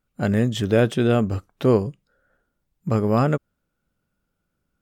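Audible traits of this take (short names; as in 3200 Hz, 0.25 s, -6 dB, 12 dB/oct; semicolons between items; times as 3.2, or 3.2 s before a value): noise floor -77 dBFS; spectral tilt -6.5 dB/oct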